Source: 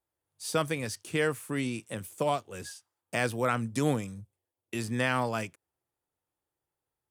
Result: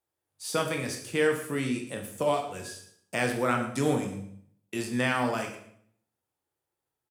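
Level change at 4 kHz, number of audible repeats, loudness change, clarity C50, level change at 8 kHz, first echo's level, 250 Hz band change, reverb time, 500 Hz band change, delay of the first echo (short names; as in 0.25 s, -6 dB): +2.0 dB, 1, +1.5 dB, 7.0 dB, +1.5 dB, -14.5 dB, +2.5 dB, 0.65 s, +3.0 dB, 0.113 s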